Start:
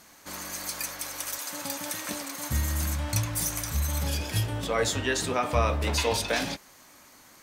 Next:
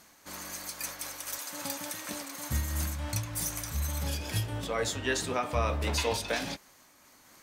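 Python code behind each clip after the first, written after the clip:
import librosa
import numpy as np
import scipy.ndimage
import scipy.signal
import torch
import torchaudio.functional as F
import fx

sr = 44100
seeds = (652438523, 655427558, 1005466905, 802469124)

y = fx.am_noise(x, sr, seeds[0], hz=5.7, depth_pct=50)
y = F.gain(torch.from_numpy(y), -1.5).numpy()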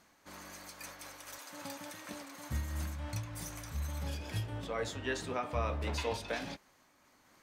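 y = fx.high_shelf(x, sr, hz=5100.0, db=-10.5)
y = F.gain(torch.from_numpy(y), -5.0).numpy()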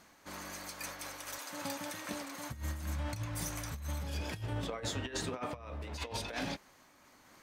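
y = fx.over_compress(x, sr, threshold_db=-39.0, ratio=-0.5)
y = F.gain(torch.from_numpy(y), 2.0).numpy()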